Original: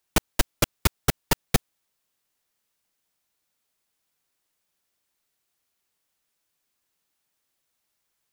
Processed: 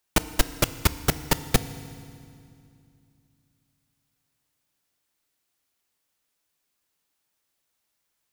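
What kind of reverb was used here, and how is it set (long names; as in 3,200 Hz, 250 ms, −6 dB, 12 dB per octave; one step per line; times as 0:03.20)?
feedback delay network reverb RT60 2.4 s, low-frequency decay 1.4×, high-frequency decay 0.9×, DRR 12.5 dB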